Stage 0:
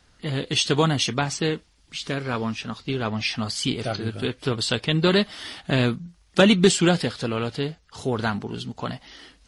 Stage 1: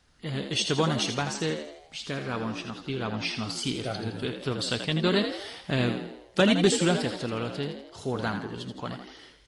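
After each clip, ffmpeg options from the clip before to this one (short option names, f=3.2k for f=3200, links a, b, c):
-filter_complex "[0:a]asplit=7[a][b][c][d][e][f][g];[b]adelay=82,afreqshift=65,volume=-8dB[h];[c]adelay=164,afreqshift=130,volume=-14dB[i];[d]adelay=246,afreqshift=195,volume=-20dB[j];[e]adelay=328,afreqshift=260,volume=-26.1dB[k];[f]adelay=410,afreqshift=325,volume=-32.1dB[l];[g]adelay=492,afreqshift=390,volume=-38.1dB[m];[a][h][i][j][k][l][m]amix=inputs=7:normalize=0,volume=-5.5dB"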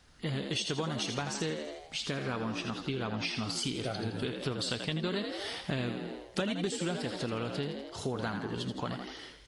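-af "acompressor=threshold=-34dB:ratio=6,volume=3dB"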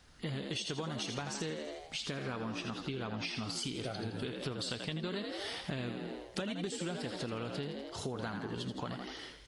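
-af "acompressor=threshold=-38dB:ratio=2"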